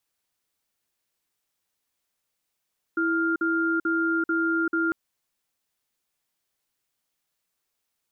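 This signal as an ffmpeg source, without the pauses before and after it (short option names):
-f lavfi -i "aevalsrc='0.0631*(sin(2*PI*329*t)+sin(2*PI*1400*t))*clip(min(mod(t,0.44),0.39-mod(t,0.44))/0.005,0,1)':d=1.95:s=44100"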